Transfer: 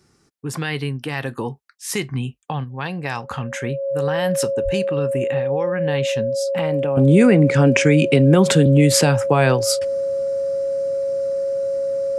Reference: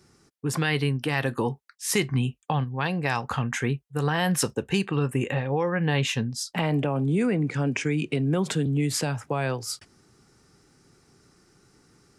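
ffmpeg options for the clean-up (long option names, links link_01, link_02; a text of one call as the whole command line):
ffmpeg -i in.wav -filter_complex "[0:a]bandreject=frequency=550:width=30,asplit=3[link_01][link_02][link_03];[link_01]afade=type=out:start_time=4.64:duration=0.02[link_04];[link_02]highpass=frequency=140:width=0.5412,highpass=frequency=140:width=1.3066,afade=type=in:start_time=4.64:duration=0.02,afade=type=out:start_time=4.76:duration=0.02[link_05];[link_03]afade=type=in:start_time=4.76:duration=0.02[link_06];[link_04][link_05][link_06]amix=inputs=3:normalize=0,asetnsamples=nb_out_samples=441:pad=0,asendcmd='6.97 volume volume -11dB',volume=0dB" out.wav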